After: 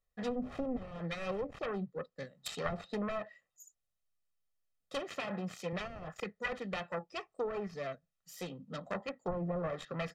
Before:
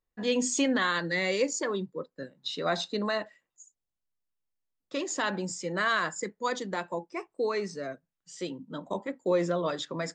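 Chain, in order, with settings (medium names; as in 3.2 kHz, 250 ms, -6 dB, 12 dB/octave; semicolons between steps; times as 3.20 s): self-modulated delay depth 0.56 ms; 5.01–5.73 s: high-pass 130 Hz; low-pass that closes with the level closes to 430 Hz, closed at -24 dBFS; dynamic bell 570 Hz, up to -4 dB, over -44 dBFS, Q 0.88; comb 1.6 ms, depth 64%; trim -2 dB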